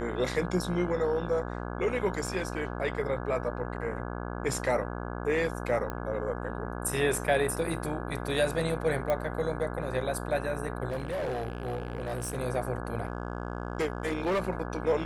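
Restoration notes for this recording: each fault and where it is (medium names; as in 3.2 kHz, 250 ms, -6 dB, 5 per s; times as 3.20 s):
buzz 60 Hz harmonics 28 -36 dBFS
2.27 s: dropout 2.3 ms
5.90 s: pop -21 dBFS
9.10 s: pop -17 dBFS
10.90–12.38 s: clipped -29 dBFS
13.03–14.43 s: clipped -24.5 dBFS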